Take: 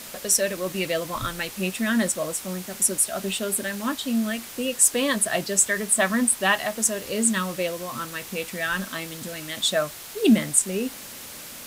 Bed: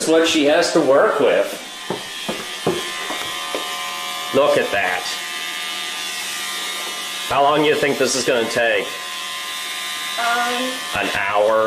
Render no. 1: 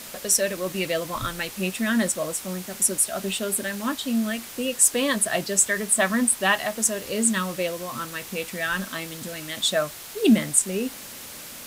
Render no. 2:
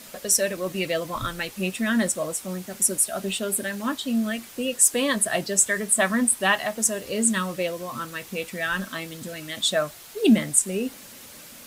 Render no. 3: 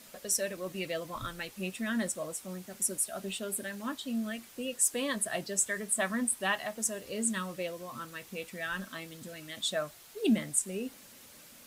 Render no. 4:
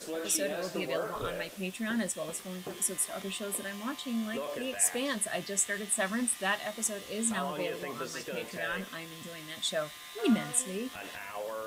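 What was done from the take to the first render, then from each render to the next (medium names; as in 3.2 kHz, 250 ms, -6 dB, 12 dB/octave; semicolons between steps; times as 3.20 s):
no audible change
noise reduction 6 dB, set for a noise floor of -40 dBFS
trim -9.5 dB
add bed -22.5 dB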